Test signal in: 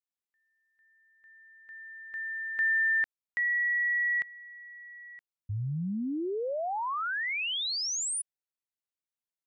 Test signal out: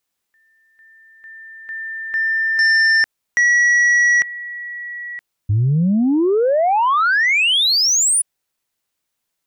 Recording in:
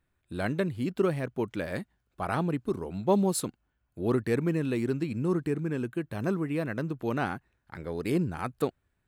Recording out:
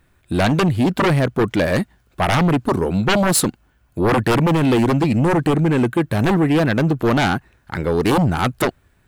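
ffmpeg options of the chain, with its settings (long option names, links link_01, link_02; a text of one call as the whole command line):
ffmpeg -i in.wav -af "aeval=exprs='0.251*sin(PI/2*5.01*val(0)/0.251)':channel_layout=same" out.wav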